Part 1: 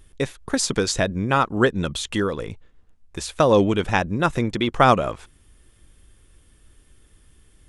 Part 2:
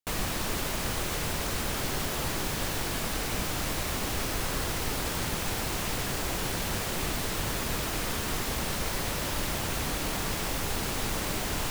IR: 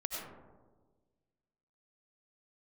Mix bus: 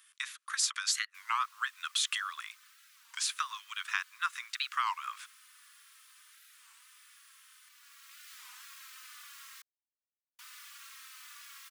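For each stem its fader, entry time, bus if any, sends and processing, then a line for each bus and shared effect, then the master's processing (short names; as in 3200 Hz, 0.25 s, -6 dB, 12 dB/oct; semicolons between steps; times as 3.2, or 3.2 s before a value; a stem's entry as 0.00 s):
0.0 dB, 0.00 s, no send, compressor 5:1, threshold -24 dBFS, peak gain reduction 13 dB
-13.5 dB, 1.10 s, muted 9.62–10.39, no send, endless flanger 3.4 ms -1.4 Hz; auto duck -10 dB, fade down 1.50 s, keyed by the first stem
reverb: off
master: steep high-pass 1100 Hz 72 dB/oct; record warp 33 1/3 rpm, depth 250 cents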